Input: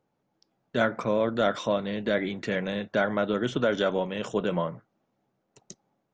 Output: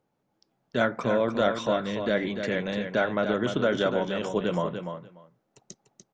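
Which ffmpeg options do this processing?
ffmpeg -i in.wav -af "aecho=1:1:294|588:0.422|0.0633" out.wav

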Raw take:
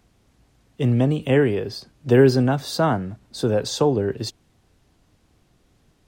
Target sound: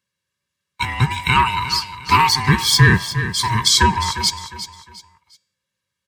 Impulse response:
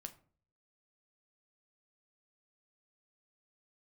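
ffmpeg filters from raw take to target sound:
-af "afftfilt=real='real(if(lt(b,1008),b+24*(1-2*mod(floor(b/24),2)),b),0)':imag='imag(if(lt(b,1008),b+24*(1-2*mod(floor(b/24),2)),b),0)':win_size=2048:overlap=0.75,highpass=frequency=77:width=0.5412,highpass=frequency=77:width=1.3066,bandreject=frequency=324.9:width_type=h:width=4,bandreject=frequency=649.8:width_type=h:width=4,bandreject=frequency=974.7:width_type=h:width=4,bandreject=frequency=1299.6:width_type=h:width=4,bandreject=frequency=1624.5:width_type=h:width=4,bandreject=frequency=1949.4:width_type=h:width=4,bandreject=frequency=2274.3:width_type=h:width=4,bandreject=frequency=2599.2:width_type=h:width=4,bandreject=frequency=2924.1:width_type=h:width=4,bandreject=frequency=3249:width_type=h:width=4,bandreject=frequency=3573.9:width_type=h:width=4,bandreject=frequency=3898.8:width_type=h:width=4,bandreject=frequency=4223.7:width_type=h:width=4,bandreject=frequency=4548.6:width_type=h:width=4,bandreject=frequency=4873.5:width_type=h:width=4,bandreject=frequency=5198.4:width_type=h:width=4,bandreject=frequency=5523.3:width_type=h:width=4,bandreject=frequency=5848.2:width_type=h:width=4,bandreject=frequency=6173.1:width_type=h:width=4,bandreject=frequency=6498:width_type=h:width=4,bandreject=frequency=6822.9:width_type=h:width=4,bandreject=frequency=7147.8:width_type=h:width=4,bandreject=frequency=7472.7:width_type=h:width=4,bandreject=frequency=7797.6:width_type=h:width=4,bandreject=frequency=8122.5:width_type=h:width=4,bandreject=frequency=8447.4:width_type=h:width=4,bandreject=frequency=8772.3:width_type=h:width=4,bandreject=frequency=9097.2:width_type=h:width=4,agate=range=-26dB:threshold=-51dB:ratio=16:detection=peak,aecho=1:1:1.8:0.71,acontrast=63,asuperstop=centerf=660:order=4:qfactor=0.74,aecho=1:1:355|710|1065:0.251|0.0804|0.0257,alimiter=level_in=8dB:limit=-1dB:release=50:level=0:latency=1,volume=-1dB"

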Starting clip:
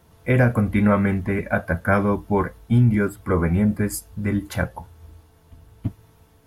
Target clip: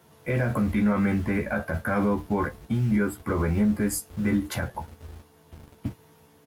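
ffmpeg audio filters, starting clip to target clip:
ffmpeg -i in.wav -filter_complex "[0:a]highpass=frequency=49:poles=1,alimiter=limit=-18dB:level=0:latency=1:release=47,acrossover=split=100[link_01][link_02];[link_01]acrusher=bits=7:mix=0:aa=0.000001[link_03];[link_03][link_02]amix=inputs=2:normalize=0,asplit=2[link_04][link_05];[link_05]adelay=14,volume=-4.5dB[link_06];[link_04][link_06]amix=inputs=2:normalize=0" out.wav

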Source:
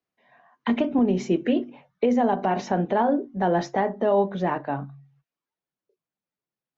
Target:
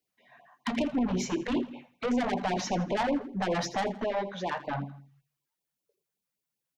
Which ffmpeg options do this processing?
ffmpeg -i in.wav -filter_complex "[0:a]asettb=1/sr,asplit=3[link_01][link_02][link_03];[link_01]atrim=end=4.044[link_04];[link_02]atrim=start=4.04:end=4.67,asetpts=PTS-STARTPTS,afade=type=in:duration=0.004:curve=qsin,afade=type=out:start_time=0.626:duration=0.004:curve=qsin,lowshelf=frequency=480:gain=-12[link_05];[link_03]atrim=start=4.666[link_06];[link_04][link_05]acrossfade=duration=0.004:curve1=hsin:curve2=qsin[link_07];[link_07][link_06]acrossfade=duration=0.004:curve1=qsin:curve2=hsin,asoftclip=type=tanh:threshold=-24dB,highshelf=frequency=4600:gain=9.5,aecho=1:1:82|164|246:0.178|0.0676|0.0257,afftfilt=real='re*(1-between(b*sr/1024,290*pow(1600/290,0.5+0.5*sin(2*PI*5.2*pts/sr))/1.41,290*pow(1600/290,0.5+0.5*sin(2*PI*5.2*pts/sr))*1.41))':imag='im*(1-between(b*sr/1024,290*pow(1600/290,0.5+0.5*sin(2*PI*5.2*pts/sr))/1.41,290*pow(1600/290,0.5+0.5*sin(2*PI*5.2*pts/sr))*1.41))':win_size=1024:overlap=0.75" out.wav

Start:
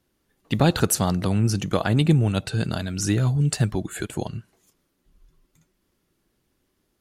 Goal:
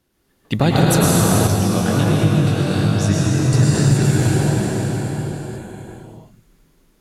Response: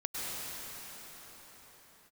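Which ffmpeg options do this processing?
-filter_complex "[1:a]atrim=start_sample=2205[link_01];[0:a][link_01]afir=irnorm=-1:irlink=0,acompressor=threshold=-17dB:ratio=2.5,asettb=1/sr,asplit=3[link_02][link_03][link_04];[link_02]atrim=end=1.474[link_05];[link_03]atrim=start=1.47:end=3.54,asetpts=PTS-STARTPTS,afade=type=in:duration=0.004:curve=qsin,afade=type=out:start_time=2.066:duration=0.004:curve=qsin,flanger=delay=19:depth=3.6:speed=1.3[link_06];[link_04]atrim=start=3.536[link_07];[link_05][link_06]acrossfade=duration=0.004:curve1=hsin:curve2=qsin[link_08];[link_08][link_07]acrossfade=duration=0.004:curve1=qsin:curve2=hsin,volume=5.5dB"

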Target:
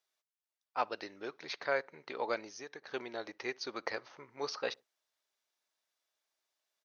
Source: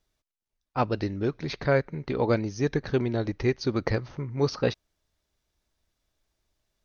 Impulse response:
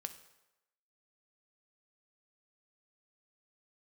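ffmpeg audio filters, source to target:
-filter_complex "[0:a]highpass=680,asettb=1/sr,asplit=3[link_01][link_02][link_03];[link_01]atrim=end=2.494[link_04];[link_02]atrim=start=2.49:end=2.91,asetpts=PTS-STARTPTS,afade=type=in:duration=0.004:curve=qsin,afade=type=out:start_time=0.416:duration=0.004:curve=qsin,acompressor=threshold=-42dB:ratio=3[link_05];[link_03]atrim=start=2.906[link_06];[link_04][link_05]acrossfade=duration=0.004:curve1=hsin:curve2=qsin[link_07];[link_07][link_06]acrossfade=duration=0.004:curve1=qsin:curve2=hsin,asplit=2[link_08][link_09];[link_09]adelay=63,lowpass=frequency=880:poles=1,volume=-24dB,asplit=2[link_10][link_11];[link_11]adelay=63,lowpass=frequency=880:poles=1,volume=0.36[link_12];[link_10][link_12]amix=inputs=2:normalize=0[link_13];[link_08][link_13]amix=inputs=2:normalize=0,volume=-4.5dB"

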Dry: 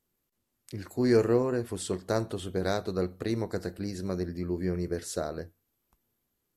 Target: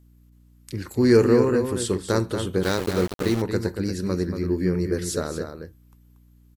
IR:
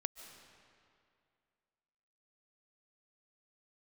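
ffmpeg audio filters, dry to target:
-filter_complex "[0:a]equalizer=frequency=680:width_type=o:width=0.33:gain=-12.5,asplit=2[link_01][link_02];[link_02]adelay=233.2,volume=-7dB,highshelf=frequency=4000:gain=-5.25[link_03];[link_01][link_03]amix=inputs=2:normalize=0,aeval=exprs='val(0)+0.001*(sin(2*PI*60*n/s)+sin(2*PI*2*60*n/s)/2+sin(2*PI*3*60*n/s)/3+sin(2*PI*4*60*n/s)/4+sin(2*PI*5*60*n/s)/5)':channel_layout=same,asettb=1/sr,asplit=3[link_04][link_05][link_06];[link_04]atrim=end=2.634[link_07];[link_05]atrim=start=2.63:end=3.42,asetpts=PTS-STARTPTS,afade=type=in:duration=0.004:curve=qsin,afade=type=out:start_time=0.786:duration=0.004:curve=qsin,aeval=exprs='val(0)*gte(abs(val(0)),0.0188)':channel_layout=same[link_08];[link_06]atrim=start=3.416[link_09];[link_07][link_08]acrossfade=duration=0.004:curve1=hsin:curve2=qsin[link_10];[link_10][link_09]acrossfade=duration=0.004:curve1=qsin:curve2=hsin,volume=7.5dB"

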